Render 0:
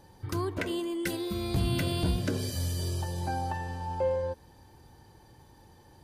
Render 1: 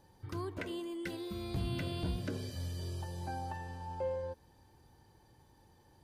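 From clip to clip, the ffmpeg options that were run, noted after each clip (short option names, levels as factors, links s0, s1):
-filter_complex "[0:a]acrossover=split=4900[s0][s1];[s1]acompressor=threshold=0.00355:ratio=4:attack=1:release=60[s2];[s0][s2]amix=inputs=2:normalize=0,volume=0.398"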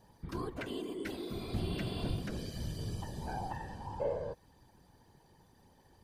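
-af "afftfilt=real='hypot(re,im)*cos(2*PI*random(0))':imag='hypot(re,im)*sin(2*PI*random(1))':win_size=512:overlap=0.75,volume=2.11"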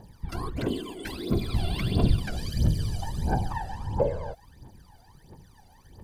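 -af "aphaser=in_gain=1:out_gain=1:delay=1.5:decay=0.78:speed=1.5:type=triangular,volume=1.68"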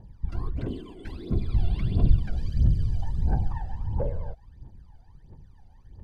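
-af "asoftclip=type=tanh:threshold=0.282,aemphasis=mode=reproduction:type=bsi,volume=0.376"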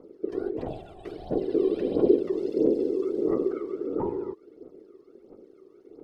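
-af "aeval=exprs='val(0)*sin(2*PI*380*n/s)':c=same"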